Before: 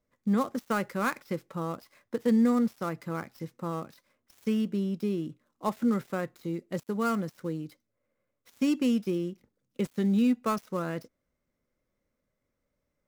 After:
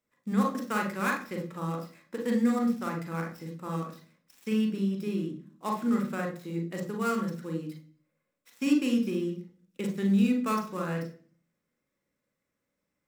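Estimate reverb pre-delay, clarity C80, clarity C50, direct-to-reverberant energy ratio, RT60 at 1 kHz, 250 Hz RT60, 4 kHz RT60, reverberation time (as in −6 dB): 37 ms, 13.5 dB, 8.0 dB, 2.0 dB, 0.40 s, 0.65 s, 0.50 s, 0.45 s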